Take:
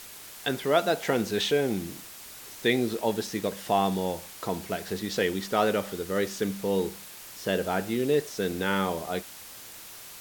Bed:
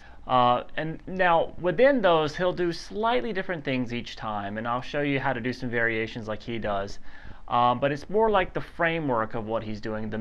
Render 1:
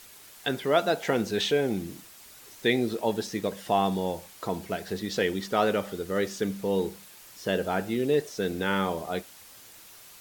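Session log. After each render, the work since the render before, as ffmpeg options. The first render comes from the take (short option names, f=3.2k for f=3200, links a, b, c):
-af "afftdn=nr=6:nf=-45"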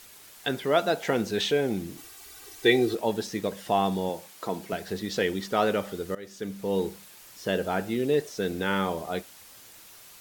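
-filter_complex "[0:a]asettb=1/sr,asplit=3[a][b][c];[a]atrim=end=1.974[d];[b]atrim=start=1.97:end=2.95,asetpts=PTS-STARTPTS,afade=t=in:d=0.004:c=qsin,afade=t=out:st=0.976:d=0.004:c=qsin,aecho=1:1:2.6:0.98,atrim=end_sample=43218[e];[c]atrim=start=2.946[f];[d][e]acrossfade=d=0.004:c1=hsin:c2=qsin[g];[g][f]acrossfade=d=0.004:c1=qsin:c2=hsin,asettb=1/sr,asplit=3[h][i][j];[h]atrim=end=4.094[k];[i]atrim=start=4.09:end=4.73,asetpts=PTS-STARTPTS,afade=t=in:d=0.004:c=qsin,afade=t=out:st=0.636:d=0.004:c=qsin,highpass=160[l];[j]atrim=start=4.726[m];[k][l]acrossfade=d=0.004:c1=hsin:c2=qsin[n];[n][m]acrossfade=d=0.004:c1=qsin:c2=hsin,asplit=2[o][p];[o]atrim=end=6.15,asetpts=PTS-STARTPTS,afade=t=out:st=6.146:d=0.004:c=hsin:silence=0.0891251[q];[p]atrim=start=6.15,asetpts=PTS-STARTPTS,afade=t=in:d=0.62:silence=0.0891251[r];[q][r]concat=n=2:v=0:a=1"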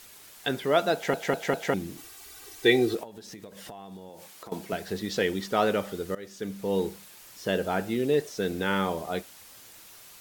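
-filter_complex "[0:a]asettb=1/sr,asplit=3[a][b][c];[a]atrim=end=3.034[d];[b]atrim=start=3.03:end=4.52,asetpts=PTS-STARTPTS,afade=t=in:d=0.004:c=qsin,afade=t=out:st=1.486:d=0.004:c=qsin,acompressor=threshold=-39dB:ratio=16:attack=3.2:release=140:knee=1:detection=peak[e];[c]atrim=start=4.516[f];[d][e]acrossfade=d=0.004:c1=hsin:c2=qsin[g];[g][f]acrossfade=d=0.004:c1=qsin:c2=hsin,asplit=5[h][i][j][k][l];[h]atrim=end=1.142[m];[i]atrim=start=0.938:end=1.142[n];[j]atrim=start=0.938:end=1.142[o];[k]atrim=start=0.938:end=1.142[p];[l]atrim=start=1.738[q];[m][n]acrossfade=d=0.004:c1=hsin:c2=hsin[r];[r][o]acrossfade=d=0.004:c1=hsin:c2=hsin[s];[s][p]acrossfade=d=0.004:c1=hsin:c2=hsin[t];[t][q]acrossfade=d=0.004:c1=hsin:c2=hsin"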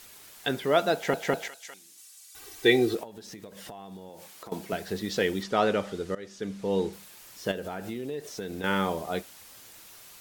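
-filter_complex "[0:a]asettb=1/sr,asplit=3[a][b][c];[a]atrim=end=1.484[d];[b]atrim=start=1.48:end=2.35,asetpts=PTS-STARTPTS,afade=t=in:d=0.004:c=qsin,afade=t=out:st=0.866:d=0.004:c=qsin,bandpass=f=7.9k:t=q:w=1[e];[c]atrim=start=2.346[f];[d][e]acrossfade=d=0.004:c1=hsin:c2=qsin[g];[g][f]acrossfade=d=0.004:c1=qsin:c2=hsin,asettb=1/sr,asplit=3[h][i][j];[h]atrim=end=5.434[k];[i]atrim=start=5.43:end=6.93,asetpts=PTS-STARTPTS,afade=t=in:d=0.004:c=qsin,afade=t=out:st=1.496:d=0.004:c=qsin,lowpass=7.7k[l];[j]atrim=start=6.926[m];[k][l]acrossfade=d=0.004:c1=hsin:c2=qsin[n];[n][m]acrossfade=d=0.004:c1=qsin:c2=hsin,asettb=1/sr,asplit=3[o][p][q];[o]atrim=end=7.514[r];[p]atrim=start=7.51:end=8.64,asetpts=PTS-STARTPTS,afade=t=in:d=0.004:c=qsin,afade=t=out:st=1.126:d=0.004:c=qsin,acompressor=threshold=-31dB:ratio=6:attack=3.2:release=140:knee=1:detection=peak[s];[q]atrim=start=8.636[t];[r][s]acrossfade=d=0.004:c1=hsin:c2=qsin[u];[u][t]acrossfade=d=0.004:c1=qsin:c2=hsin"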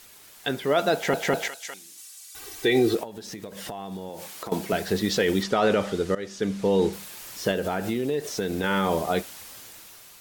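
-af "dynaudnorm=f=200:g=9:m=9dB,alimiter=limit=-12dB:level=0:latency=1:release=16"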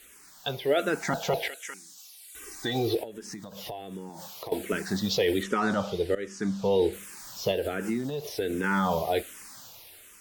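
-filter_complex "[0:a]asplit=2[a][b];[b]afreqshift=-1.3[c];[a][c]amix=inputs=2:normalize=1"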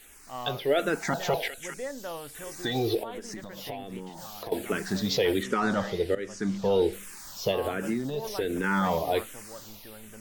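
-filter_complex "[1:a]volume=-17dB[a];[0:a][a]amix=inputs=2:normalize=0"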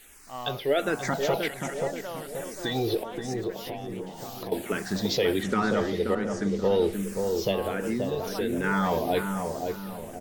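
-filter_complex "[0:a]asplit=2[a][b];[b]adelay=530,lowpass=f=940:p=1,volume=-3.5dB,asplit=2[c][d];[d]adelay=530,lowpass=f=940:p=1,volume=0.47,asplit=2[e][f];[f]adelay=530,lowpass=f=940:p=1,volume=0.47,asplit=2[g][h];[h]adelay=530,lowpass=f=940:p=1,volume=0.47,asplit=2[i][j];[j]adelay=530,lowpass=f=940:p=1,volume=0.47,asplit=2[k][l];[l]adelay=530,lowpass=f=940:p=1,volume=0.47[m];[a][c][e][g][i][k][m]amix=inputs=7:normalize=0"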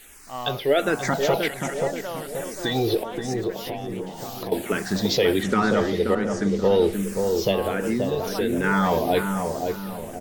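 -af "volume=4.5dB"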